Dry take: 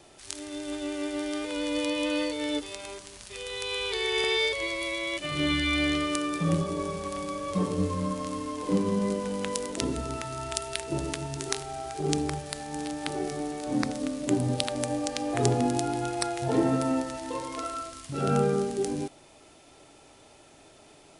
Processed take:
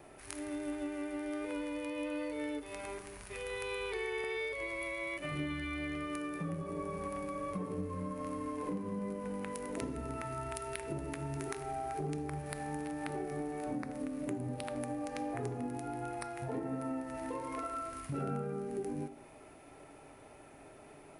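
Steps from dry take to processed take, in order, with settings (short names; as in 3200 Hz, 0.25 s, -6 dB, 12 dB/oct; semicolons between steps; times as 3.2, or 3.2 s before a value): band shelf 5000 Hz -13 dB; compressor 6:1, threshold -36 dBFS, peak gain reduction 16 dB; on a send: reverb RT60 0.70 s, pre-delay 3 ms, DRR 13 dB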